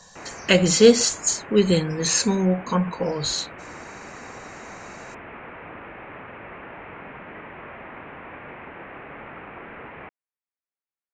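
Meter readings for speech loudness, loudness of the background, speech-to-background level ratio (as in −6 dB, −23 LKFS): −20.0 LKFS, −39.5 LKFS, 19.5 dB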